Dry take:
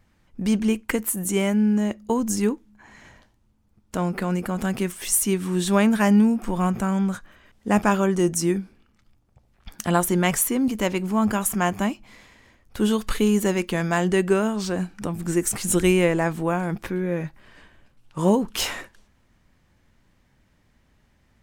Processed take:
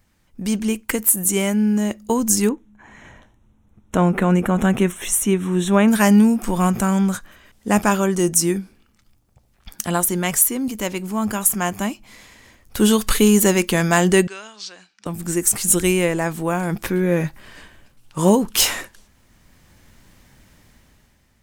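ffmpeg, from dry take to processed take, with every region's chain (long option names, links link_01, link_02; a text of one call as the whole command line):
ffmpeg -i in.wav -filter_complex "[0:a]asettb=1/sr,asplit=3[link_01][link_02][link_03];[link_01]atrim=end=2.494[link_04];[link_02]atrim=start=2.49:end=5.88,asetpts=PTS-STARTPTS,afade=type=in:duration=0.004:curve=qsin,afade=type=out:start_time=3.386:duration=0.004:curve=qsin,asuperstop=centerf=4700:order=4:qfactor=2.9,aemphasis=mode=reproduction:type=75kf[link_05];[link_03]atrim=start=5.876[link_06];[link_04][link_05]acrossfade=duration=0.004:curve1=hsin:curve2=qsin[link_07];[link_07][link_06]acrossfade=duration=0.004:curve1=qsin:curve2=hsin,asettb=1/sr,asplit=3[link_08][link_09][link_10];[link_08]atrim=end=14.274[link_11];[link_09]atrim=start=14.27:end=15.06,asetpts=PTS-STARTPTS,afade=type=in:duration=0.004:curve=qsin,afade=type=out:start_time=0.786:duration=0.004:curve=qsin,lowpass=frequency=4800:width=0.5412,lowpass=frequency=4800:width=1.3066,aderivative[link_12];[link_10]atrim=start=15.056[link_13];[link_11][link_12]acrossfade=duration=0.004:curve1=hsin:curve2=qsin[link_14];[link_14][link_13]acrossfade=duration=0.004:curve1=qsin:curve2=hsin,highshelf=frequency=5200:gain=11,dynaudnorm=framelen=140:gausssize=11:maxgain=11.5dB,volume=-1dB" out.wav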